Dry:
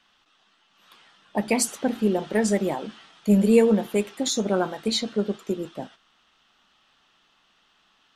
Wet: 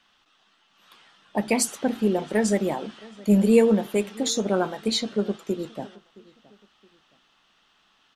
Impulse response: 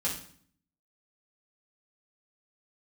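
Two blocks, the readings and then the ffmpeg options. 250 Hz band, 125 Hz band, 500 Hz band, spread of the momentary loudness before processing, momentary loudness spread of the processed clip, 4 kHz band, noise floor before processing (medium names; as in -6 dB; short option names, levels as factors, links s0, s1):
0.0 dB, 0.0 dB, 0.0 dB, 14 LU, 14 LU, 0.0 dB, -65 dBFS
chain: -filter_complex "[0:a]asplit=2[s0][s1];[s1]adelay=669,lowpass=f=2300:p=1,volume=0.075,asplit=2[s2][s3];[s3]adelay=669,lowpass=f=2300:p=1,volume=0.36[s4];[s0][s2][s4]amix=inputs=3:normalize=0"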